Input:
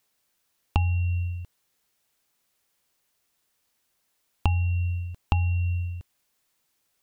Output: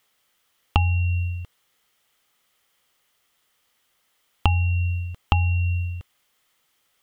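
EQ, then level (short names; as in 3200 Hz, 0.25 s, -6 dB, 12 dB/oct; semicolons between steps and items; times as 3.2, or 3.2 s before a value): thirty-one-band EQ 500 Hz +4 dB, 800 Hz +3 dB, 1250 Hz +8 dB, 2000 Hz +7 dB, 3150 Hz +9 dB; +3.0 dB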